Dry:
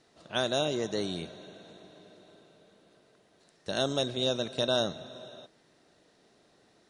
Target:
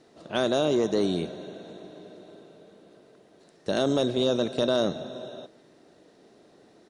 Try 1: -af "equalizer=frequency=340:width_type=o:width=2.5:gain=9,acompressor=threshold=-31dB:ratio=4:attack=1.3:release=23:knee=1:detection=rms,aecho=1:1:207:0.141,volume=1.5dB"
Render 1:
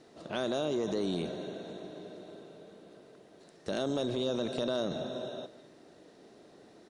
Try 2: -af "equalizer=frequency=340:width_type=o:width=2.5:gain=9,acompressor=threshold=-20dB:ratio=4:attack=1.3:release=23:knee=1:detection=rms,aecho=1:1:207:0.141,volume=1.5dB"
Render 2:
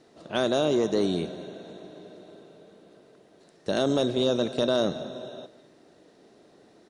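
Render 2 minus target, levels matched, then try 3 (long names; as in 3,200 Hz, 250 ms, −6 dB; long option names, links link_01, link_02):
echo-to-direct +6.5 dB
-af "equalizer=frequency=340:width_type=o:width=2.5:gain=9,acompressor=threshold=-20dB:ratio=4:attack=1.3:release=23:knee=1:detection=rms,aecho=1:1:207:0.0668,volume=1.5dB"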